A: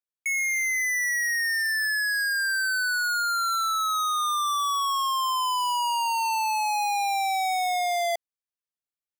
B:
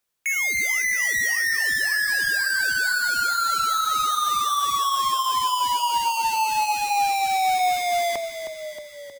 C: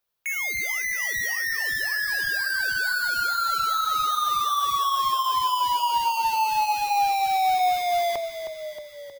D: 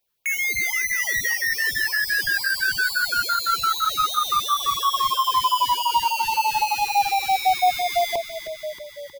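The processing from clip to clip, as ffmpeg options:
ffmpeg -i in.wav -filter_complex "[0:a]aeval=exprs='0.0562*sin(PI/2*3.16*val(0)/0.0562)':channel_layout=same,flanger=delay=1.5:depth=1.8:regen=-84:speed=0.81:shape=triangular,asplit=2[link_01][link_02];[link_02]asplit=8[link_03][link_04][link_05][link_06][link_07][link_08][link_09][link_10];[link_03]adelay=314,afreqshift=-37,volume=-9.5dB[link_11];[link_04]adelay=628,afreqshift=-74,volume=-13.5dB[link_12];[link_05]adelay=942,afreqshift=-111,volume=-17.5dB[link_13];[link_06]adelay=1256,afreqshift=-148,volume=-21.5dB[link_14];[link_07]adelay=1570,afreqshift=-185,volume=-25.6dB[link_15];[link_08]adelay=1884,afreqshift=-222,volume=-29.6dB[link_16];[link_09]adelay=2198,afreqshift=-259,volume=-33.6dB[link_17];[link_10]adelay=2512,afreqshift=-296,volume=-37.6dB[link_18];[link_11][link_12][link_13][link_14][link_15][link_16][link_17][link_18]amix=inputs=8:normalize=0[link_19];[link_01][link_19]amix=inputs=2:normalize=0,volume=6.5dB" out.wav
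ffmpeg -i in.wav -af "equalizer=frequency=250:width_type=o:width=1:gain=-8,equalizer=frequency=2000:width_type=o:width=1:gain=-5,equalizer=frequency=8000:width_type=o:width=1:gain=-10,volume=1dB" out.wav
ffmpeg -i in.wav -af "afftfilt=real='re*(1-between(b*sr/1024,550*pow(1600/550,0.5+0.5*sin(2*PI*5.9*pts/sr))/1.41,550*pow(1600/550,0.5+0.5*sin(2*PI*5.9*pts/sr))*1.41))':imag='im*(1-between(b*sr/1024,550*pow(1600/550,0.5+0.5*sin(2*PI*5.9*pts/sr))/1.41,550*pow(1600/550,0.5+0.5*sin(2*PI*5.9*pts/sr))*1.41))':win_size=1024:overlap=0.75,volume=4.5dB" out.wav

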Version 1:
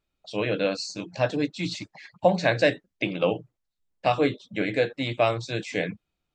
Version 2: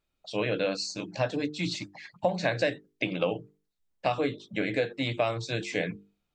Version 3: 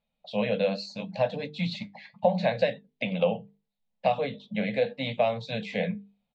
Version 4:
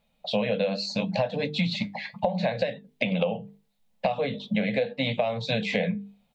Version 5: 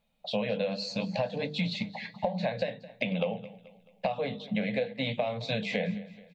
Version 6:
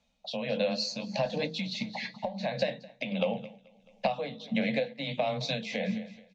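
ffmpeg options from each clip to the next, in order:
ffmpeg -i in.wav -af "acompressor=threshold=-24dB:ratio=3,bandreject=frequency=50:width_type=h:width=6,bandreject=frequency=100:width_type=h:width=6,bandreject=frequency=150:width_type=h:width=6,bandreject=frequency=200:width_type=h:width=6,bandreject=frequency=250:width_type=h:width=6,bandreject=frequency=300:width_type=h:width=6,bandreject=frequency=350:width_type=h:width=6,bandreject=frequency=400:width_type=h:width=6,bandreject=frequency=450:width_type=h:width=6" out.wav
ffmpeg -i in.wav -af "firequalizer=gain_entry='entry(120,0);entry(220,15);entry(330,-21);entry(480,8);entry(840,8);entry(1300,-5);entry(2000,3);entry(3900,4);entry(5500,-9);entry(9100,-15)':delay=0.05:min_phase=1,flanger=delay=5.9:depth=3.6:regen=-69:speed=0.76:shape=sinusoidal" out.wav
ffmpeg -i in.wav -filter_complex "[0:a]asplit=2[link_01][link_02];[link_02]alimiter=limit=-17.5dB:level=0:latency=1:release=293,volume=3dB[link_03];[link_01][link_03]amix=inputs=2:normalize=0,acompressor=threshold=-27dB:ratio=6,volume=4dB" out.wav
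ffmpeg -i in.wav -af "aecho=1:1:216|432|648|864:0.126|0.0554|0.0244|0.0107,volume=-4.5dB" out.wav
ffmpeg -i in.wav -af "afreqshift=13,lowpass=frequency=6100:width_type=q:width=3.3,tremolo=f=1.5:d=0.59,volume=2dB" out.wav

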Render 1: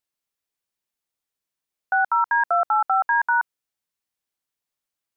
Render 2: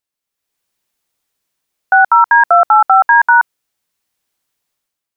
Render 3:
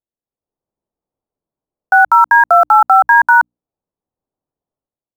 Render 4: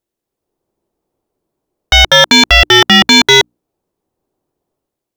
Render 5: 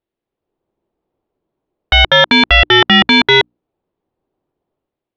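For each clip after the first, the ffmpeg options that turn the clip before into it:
ffmpeg -i in.wav -af "dynaudnorm=framelen=100:gausssize=9:maxgain=11dB,volume=2dB" out.wav
ffmpeg -i in.wav -filter_complex "[0:a]bandreject=frequency=60:width_type=h:width=6,bandreject=frequency=120:width_type=h:width=6,bandreject=frequency=180:width_type=h:width=6,bandreject=frequency=240:width_type=h:width=6,bandreject=frequency=300:width_type=h:width=6,acrossover=split=880[link_01][link_02];[link_02]aeval=exprs='val(0)*gte(abs(val(0)),0.0447)':channel_layout=same[link_03];[link_01][link_03]amix=inputs=2:normalize=0" out.wav
ffmpeg -i in.wav -af "equalizer=frequency=360:width=3.1:gain=7.5,aeval=exprs='0.944*sin(PI/2*2.82*val(0)/0.944)':channel_layout=same,volume=-1dB" out.wav
ffmpeg -i in.wav -af "lowpass=frequency=3600:width=0.5412,lowpass=frequency=3600:width=1.3066,volume=-1.5dB" out.wav

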